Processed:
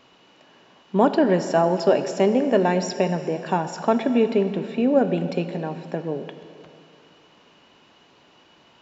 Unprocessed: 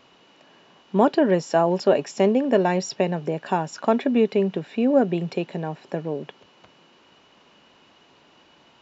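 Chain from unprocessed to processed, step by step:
dense smooth reverb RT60 2.6 s, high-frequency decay 0.85×, DRR 9 dB

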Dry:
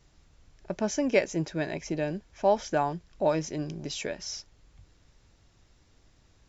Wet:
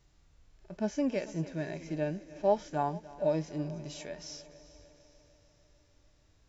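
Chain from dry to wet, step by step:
echo machine with several playback heads 149 ms, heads second and third, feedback 56%, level −20 dB
harmonic and percussive parts rebalanced percussive −15 dB
level −1.5 dB

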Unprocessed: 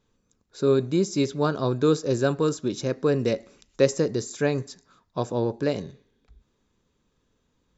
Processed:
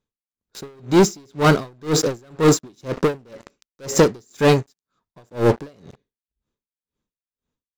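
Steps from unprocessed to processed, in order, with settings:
leveller curve on the samples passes 5
tremolo with a sine in dB 2 Hz, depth 38 dB

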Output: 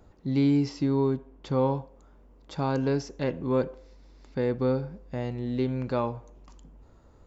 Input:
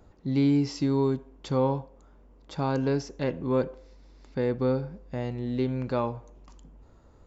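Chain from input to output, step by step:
0:00.69–0:01.58: high-shelf EQ 4,900 Hz −10.5 dB

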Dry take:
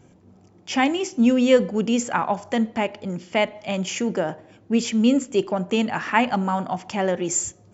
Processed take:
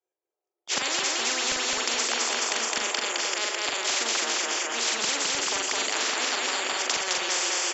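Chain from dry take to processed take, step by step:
Butterworth high-pass 350 Hz 72 dB per octave
noise gate −49 dBFS, range −55 dB
in parallel at +2 dB: brickwall limiter −17 dBFS, peak gain reduction 10.5 dB
on the sum: volume swells 127 ms
double-tracking delay 43 ms −5 dB
on a send: repeating echo 212 ms, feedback 45%, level −3.5 dB
on the sum: every bin compressed towards the loudest bin 10 to 1
level −4 dB

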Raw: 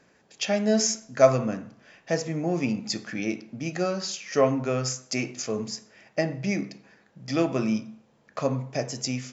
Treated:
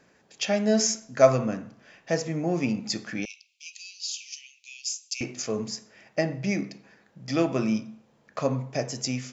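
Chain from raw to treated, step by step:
0:03.25–0:05.21: Butterworth high-pass 2,500 Hz 72 dB per octave

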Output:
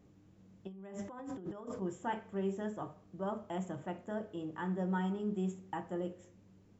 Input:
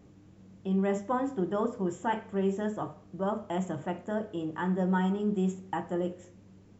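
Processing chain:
0:00.67–0:01.82: compressor whose output falls as the input rises −38 dBFS, ratio −1
level −7 dB

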